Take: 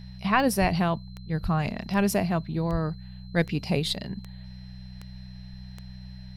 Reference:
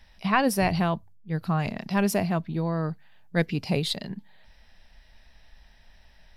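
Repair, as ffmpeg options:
-filter_complex "[0:a]adeclick=t=4,bandreject=f=62.8:t=h:w=4,bandreject=f=125.6:t=h:w=4,bandreject=f=188.4:t=h:w=4,bandreject=f=4100:w=30,asplit=3[s0][s1][s2];[s0]afade=t=out:st=0.6:d=0.02[s3];[s1]highpass=f=140:w=0.5412,highpass=f=140:w=1.3066,afade=t=in:st=0.6:d=0.02,afade=t=out:st=0.72:d=0.02[s4];[s2]afade=t=in:st=0.72:d=0.02[s5];[s3][s4][s5]amix=inputs=3:normalize=0,asplit=3[s6][s7][s8];[s6]afade=t=out:st=1.42:d=0.02[s9];[s7]highpass=f=140:w=0.5412,highpass=f=140:w=1.3066,afade=t=in:st=1.42:d=0.02,afade=t=out:st=1.54:d=0.02[s10];[s8]afade=t=in:st=1.54:d=0.02[s11];[s9][s10][s11]amix=inputs=3:normalize=0,asplit=3[s12][s13][s14];[s12]afade=t=out:st=2.71:d=0.02[s15];[s13]highpass=f=140:w=0.5412,highpass=f=140:w=1.3066,afade=t=in:st=2.71:d=0.02,afade=t=out:st=2.83:d=0.02[s16];[s14]afade=t=in:st=2.83:d=0.02[s17];[s15][s16][s17]amix=inputs=3:normalize=0"

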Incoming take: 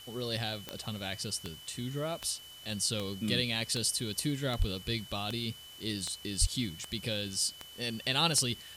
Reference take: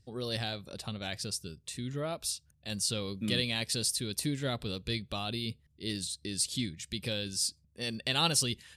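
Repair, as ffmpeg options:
-filter_complex "[0:a]adeclick=t=4,bandreject=f=3000:w=30,asplit=3[s0][s1][s2];[s0]afade=t=out:st=4.58:d=0.02[s3];[s1]highpass=f=140:w=0.5412,highpass=f=140:w=1.3066,afade=t=in:st=4.58:d=0.02,afade=t=out:st=4.7:d=0.02[s4];[s2]afade=t=in:st=4.7:d=0.02[s5];[s3][s4][s5]amix=inputs=3:normalize=0,asplit=3[s6][s7][s8];[s6]afade=t=out:st=6.4:d=0.02[s9];[s7]highpass=f=140:w=0.5412,highpass=f=140:w=1.3066,afade=t=in:st=6.4:d=0.02,afade=t=out:st=6.52:d=0.02[s10];[s8]afade=t=in:st=6.52:d=0.02[s11];[s9][s10][s11]amix=inputs=3:normalize=0,afwtdn=0.002"

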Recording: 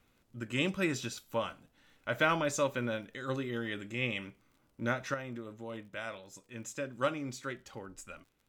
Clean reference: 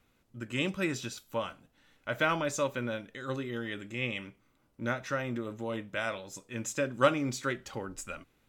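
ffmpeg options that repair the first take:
-af "adeclick=t=4,asetnsamples=n=441:p=0,asendcmd='5.14 volume volume 7dB',volume=1"

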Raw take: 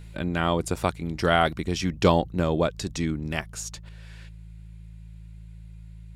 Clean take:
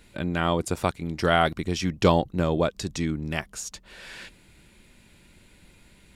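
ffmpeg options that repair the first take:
-af "bandreject=f=54.6:t=h:w=4,bandreject=f=109.2:t=h:w=4,bandreject=f=163.8:t=h:w=4,asetnsamples=n=441:p=0,asendcmd='3.89 volume volume 10.5dB',volume=1"

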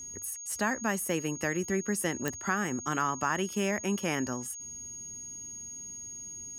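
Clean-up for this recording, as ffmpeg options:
-af "adeclick=t=4,bandreject=f=6600:w=30"

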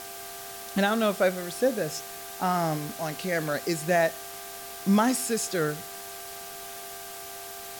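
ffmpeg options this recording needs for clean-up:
-af "bandreject=f=394:t=h:w=4,bandreject=f=788:t=h:w=4,bandreject=f=1182:t=h:w=4,bandreject=f=1576:t=h:w=4,bandreject=f=690:w=30,afftdn=nr=30:nf=-40"

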